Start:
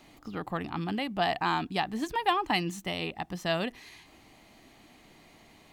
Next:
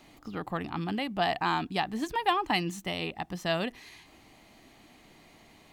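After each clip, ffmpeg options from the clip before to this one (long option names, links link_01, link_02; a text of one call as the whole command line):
ffmpeg -i in.wav -af anull out.wav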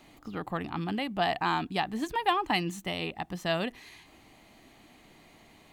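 ffmpeg -i in.wav -af "equalizer=frequency=5300:width_type=o:width=0.39:gain=-3.5" out.wav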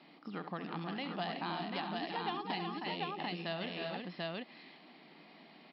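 ffmpeg -i in.wav -filter_complex "[0:a]aecho=1:1:68|207|314|364|741:0.266|0.112|0.376|0.376|0.668,acrossover=split=730|3600[link_01][link_02][link_03];[link_01]acompressor=threshold=-37dB:ratio=4[link_04];[link_02]acompressor=threshold=-40dB:ratio=4[link_05];[link_03]acompressor=threshold=-43dB:ratio=4[link_06];[link_04][link_05][link_06]amix=inputs=3:normalize=0,afftfilt=real='re*between(b*sr/4096,140,5500)':imag='im*between(b*sr/4096,140,5500)':win_size=4096:overlap=0.75,volume=-3dB" out.wav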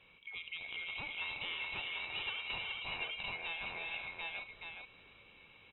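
ffmpeg -i in.wav -filter_complex "[0:a]afftfilt=real='real(if(lt(b,920),b+92*(1-2*mod(floor(b/92),2)),b),0)':imag='imag(if(lt(b,920),b+92*(1-2*mod(floor(b/92),2)),b),0)':win_size=2048:overlap=0.75,asplit=2[link_01][link_02];[link_02]aecho=0:1:422:0.562[link_03];[link_01][link_03]amix=inputs=2:normalize=0,aresample=11025,aresample=44100,volume=-3.5dB" out.wav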